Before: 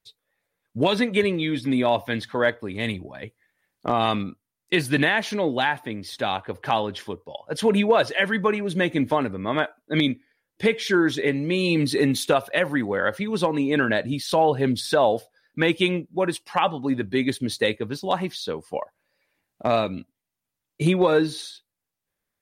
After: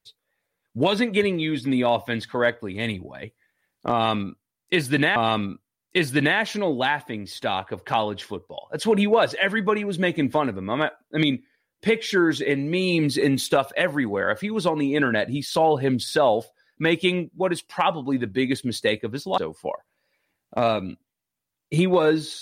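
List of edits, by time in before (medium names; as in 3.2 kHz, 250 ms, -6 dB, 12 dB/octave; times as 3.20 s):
3.93–5.16 s: loop, 2 plays
18.15–18.46 s: delete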